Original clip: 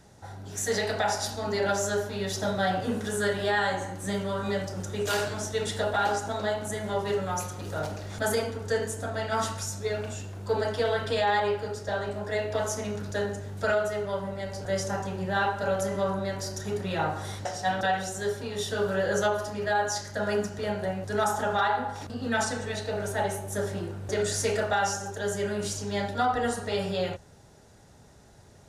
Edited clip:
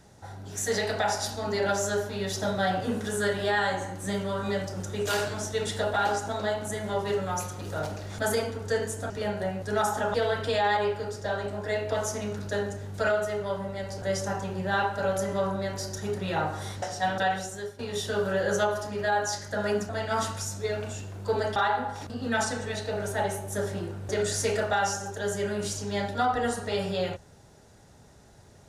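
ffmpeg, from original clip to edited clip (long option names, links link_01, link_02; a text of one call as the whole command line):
ffmpeg -i in.wav -filter_complex "[0:a]asplit=6[link_01][link_02][link_03][link_04][link_05][link_06];[link_01]atrim=end=9.102[link_07];[link_02]atrim=start=20.518:end=21.562[link_08];[link_03]atrim=start=10.768:end=18.42,asetpts=PTS-STARTPTS,afade=type=out:start_time=7.212:duration=0.44:silence=0.188365[link_09];[link_04]atrim=start=18.42:end=20.522,asetpts=PTS-STARTPTS,afade=type=in:duration=0.004:curve=hsin:silence=0.188365[link_10];[link_05]atrim=start=9.098:end=10.772[link_11];[link_06]atrim=start=21.558[link_12];[link_07][link_08]acrossfade=duration=0.004:curve1=hsin:curve2=hsin[link_13];[link_09][link_10]concat=n=2:v=0:a=1[link_14];[link_13][link_14]acrossfade=duration=0.004:curve1=hsin:curve2=hsin[link_15];[link_15][link_11]acrossfade=duration=0.004:curve1=hsin:curve2=hsin[link_16];[link_16][link_12]acrossfade=duration=0.004:curve1=hsin:curve2=hsin" out.wav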